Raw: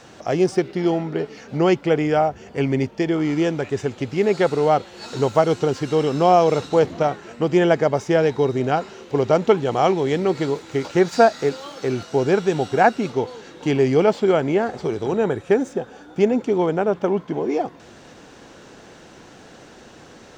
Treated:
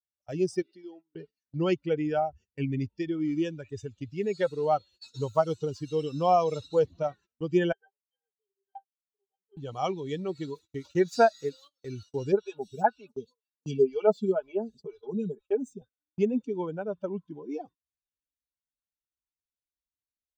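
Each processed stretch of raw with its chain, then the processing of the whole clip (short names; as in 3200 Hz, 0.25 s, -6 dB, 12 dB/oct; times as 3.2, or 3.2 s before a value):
0.62–1.15 HPF 220 Hz 24 dB/oct + compressor 2:1, threshold -29 dBFS
7.72–9.57 HPF 520 Hz + octave resonator G, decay 0.15 s
12.32–15.82 bell 1900 Hz -9.5 dB 0.35 oct + comb 4.8 ms, depth 60% + photocell phaser 2 Hz
whole clip: per-bin expansion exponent 2; notch 2100 Hz, Q 9; gate -44 dBFS, range -28 dB; gain -4.5 dB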